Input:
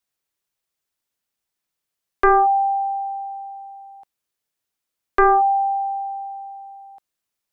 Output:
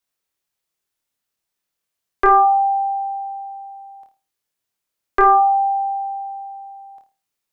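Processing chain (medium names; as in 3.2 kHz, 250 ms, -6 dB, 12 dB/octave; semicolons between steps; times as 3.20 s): flutter echo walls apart 4.6 m, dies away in 0.3 s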